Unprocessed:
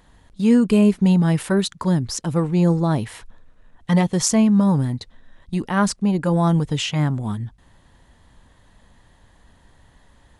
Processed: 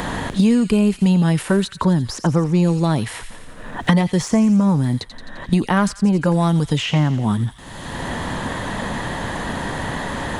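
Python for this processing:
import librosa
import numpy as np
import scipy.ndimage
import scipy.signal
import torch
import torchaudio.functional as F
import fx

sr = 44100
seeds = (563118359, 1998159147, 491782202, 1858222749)

p1 = 10.0 ** (-21.5 / 20.0) * np.tanh(x / 10.0 ** (-21.5 / 20.0))
p2 = x + F.gain(torch.from_numpy(p1), -8.0).numpy()
p3 = fx.echo_wet_highpass(p2, sr, ms=86, feedback_pct=49, hz=2400.0, wet_db=-9.5)
y = fx.band_squash(p3, sr, depth_pct=100)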